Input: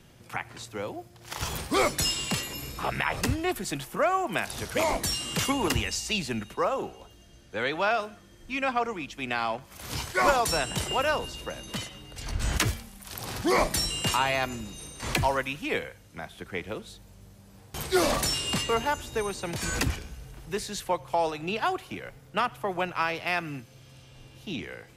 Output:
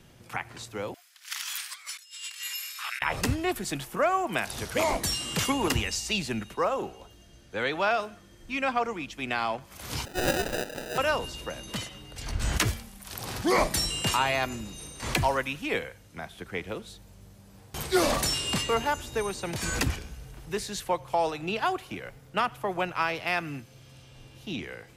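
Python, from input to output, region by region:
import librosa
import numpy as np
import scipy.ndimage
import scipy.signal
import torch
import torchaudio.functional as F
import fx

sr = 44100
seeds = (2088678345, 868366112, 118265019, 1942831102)

y = fx.chain(x, sr, fx.highpass(hz=1500.0, slope=24),
    fx.over_compress(threshold_db=-37.0, ratio=-0.5), at=(0.94, 3.02))
y = fx.chain(y, sr, fx.brickwall_highpass(low_hz=200.0),
    fx.sample_hold(seeds[0], rate_hz=1100.0, jitter_pct=0),
    fx.low_shelf(hz=500.0, db=-7.5), at=(10.05, 10.98))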